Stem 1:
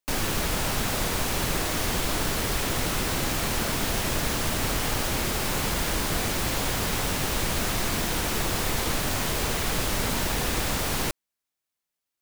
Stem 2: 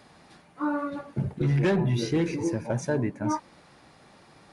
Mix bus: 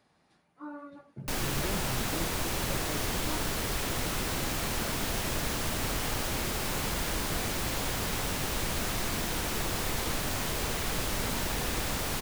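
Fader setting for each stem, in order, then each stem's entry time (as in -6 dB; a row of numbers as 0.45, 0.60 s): -5.0, -14.5 dB; 1.20, 0.00 s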